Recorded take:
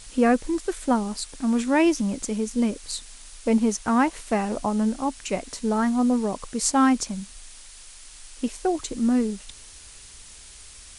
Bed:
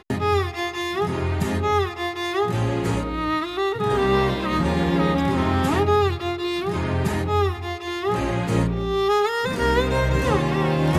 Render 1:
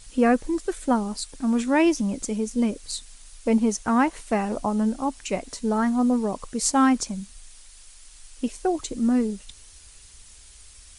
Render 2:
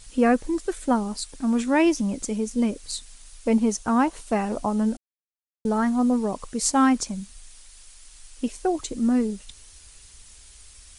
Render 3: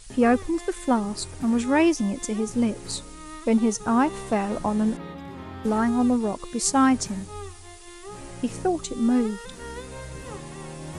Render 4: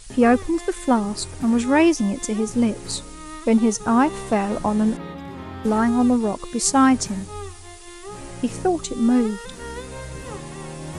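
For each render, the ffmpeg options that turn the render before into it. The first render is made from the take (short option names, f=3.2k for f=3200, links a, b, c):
-af "afftdn=nr=6:nf=-46"
-filter_complex "[0:a]asettb=1/sr,asplit=3[a][b][c];[a]atrim=end=3.774[d];[b]atrim=start=3.77:end=4.36,asetpts=PTS-STARTPTS,afade=t=in:d=0.004:c=qsin,afade=t=out:st=0.586:d=0.004:c=qsin,equalizer=f=2k:w=2.5:g=-6.5[e];[c]atrim=start=4.356[f];[d][e]acrossfade=d=0.004:c1=hsin:c2=qsin[g];[g][f]acrossfade=d=0.004:c1=qsin:c2=hsin,asplit=3[h][i][j];[h]atrim=end=4.97,asetpts=PTS-STARTPTS,afade=t=out:st=4.966:d=0.004:c=hsin[k];[i]atrim=start=4.97:end=5.65,asetpts=PTS-STARTPTS,volume=0[l];[j]atrim=start=5.65,asetpts=PTS-STARTPTS,afade=t=in:d=0.004:c=hsin[m];[k][l][m]concat=n=3:v=0:a=1"
-filter_complex "[1:a]volume=-17.5dB[a];[0:a][a]amix=inputs=2:normalize=0"
-af "volume=3.5dB"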